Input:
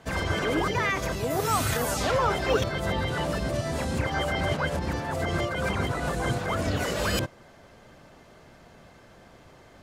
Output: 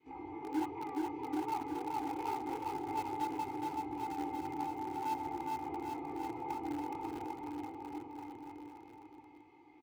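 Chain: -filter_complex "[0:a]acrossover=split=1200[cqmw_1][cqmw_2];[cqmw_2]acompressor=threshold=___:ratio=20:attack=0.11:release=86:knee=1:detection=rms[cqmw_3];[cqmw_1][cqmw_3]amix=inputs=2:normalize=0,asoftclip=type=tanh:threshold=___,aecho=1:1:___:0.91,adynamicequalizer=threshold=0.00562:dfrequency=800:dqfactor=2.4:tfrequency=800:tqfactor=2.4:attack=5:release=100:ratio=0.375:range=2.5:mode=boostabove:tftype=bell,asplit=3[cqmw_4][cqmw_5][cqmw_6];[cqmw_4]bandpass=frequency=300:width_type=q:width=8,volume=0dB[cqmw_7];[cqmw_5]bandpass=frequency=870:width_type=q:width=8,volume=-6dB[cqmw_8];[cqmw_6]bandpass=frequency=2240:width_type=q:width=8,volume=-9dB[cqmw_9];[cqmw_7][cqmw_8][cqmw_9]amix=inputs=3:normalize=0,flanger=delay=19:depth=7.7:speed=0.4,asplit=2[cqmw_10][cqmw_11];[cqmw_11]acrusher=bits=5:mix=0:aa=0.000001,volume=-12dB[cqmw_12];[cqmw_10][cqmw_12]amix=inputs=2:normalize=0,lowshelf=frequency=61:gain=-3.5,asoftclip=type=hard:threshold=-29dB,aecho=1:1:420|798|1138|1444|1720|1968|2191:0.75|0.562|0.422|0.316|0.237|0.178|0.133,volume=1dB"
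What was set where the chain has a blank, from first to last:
-43dB, -27.5dB, 2.4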